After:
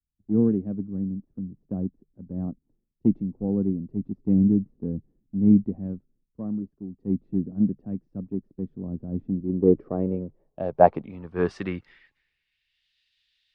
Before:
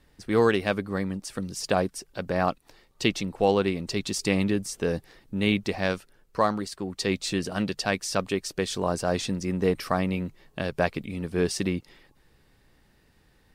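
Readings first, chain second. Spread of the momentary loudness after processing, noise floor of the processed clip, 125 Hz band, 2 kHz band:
16 LU, -78 dBFS, +2.5 dB, under -10 dB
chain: low-pass sweep 240 Hz -> 3.4 kHz, 9.16–12.92 s; three bands expanded up and down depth 100%; trim -2 dB

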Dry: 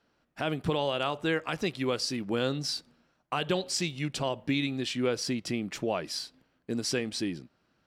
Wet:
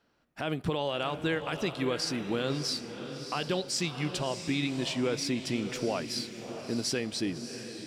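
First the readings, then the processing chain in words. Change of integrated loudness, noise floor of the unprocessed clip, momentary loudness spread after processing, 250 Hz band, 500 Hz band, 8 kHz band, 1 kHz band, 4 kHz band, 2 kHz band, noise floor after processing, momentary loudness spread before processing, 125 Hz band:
-1.0 dB, -73 dBFS, 5 LU, 0.0 dB, -1.0 dB, +0.5 dB, -1.5 dB, 0.0 dB, -1.0 dB, -50 dBFS, 7 LU, 0.0 dB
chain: peak limiter -20 dBFS, peak gain reduction 3 dB; echo that smears into a reverb 650 ms, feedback 42%, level -9 dB

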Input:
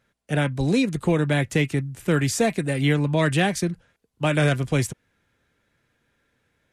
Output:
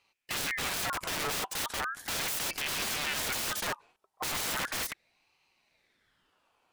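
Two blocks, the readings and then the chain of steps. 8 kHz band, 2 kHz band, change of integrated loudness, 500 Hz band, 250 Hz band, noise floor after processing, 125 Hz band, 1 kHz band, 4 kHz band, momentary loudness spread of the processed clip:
0.0 dB, -6.0 dB, -9.0 dB, -17.5 dB, -23.0 dB, -78 dBFS, -26.0 dB, -5.5 dB, -0.5 dB, 6 LU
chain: integer overflow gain 25.5 dB; ring modulator with a swept carrier 1.7 kHz, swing 50%, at 0.37 Hz

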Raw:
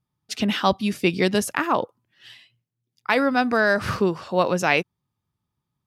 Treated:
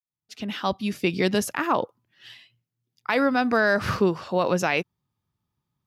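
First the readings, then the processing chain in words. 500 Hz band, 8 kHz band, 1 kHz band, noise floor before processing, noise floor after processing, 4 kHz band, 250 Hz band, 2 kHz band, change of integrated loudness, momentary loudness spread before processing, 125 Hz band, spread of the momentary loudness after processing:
-1.5 dB, -2.5 dB, -2.5 dB, -83 dBFS, under -85 dBFS, -4.0 dB, -2.0 dB, -2.5 dB, -2.0 dB, 7 LU, -1.5 dB, 13 LU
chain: fade-in on the opening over 1.29 s; peaking EQ 8.8 kHz -5.5 dB 0.34 oct; peak limiter -11.5 dBFS, peak gain reduction 6 dB

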